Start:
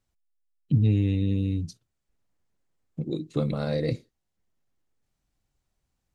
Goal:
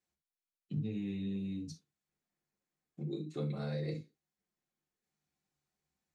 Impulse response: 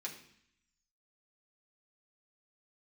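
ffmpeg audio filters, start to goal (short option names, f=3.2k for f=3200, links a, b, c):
-filter_complex "[1:a]atrim=start_sample=2205,atrim=end_sample=3528[a];[0:a][a]afir=irnorm=-1:irlink=0,acompressor=threshold=-34dB:ratio=2,volume=-4dB"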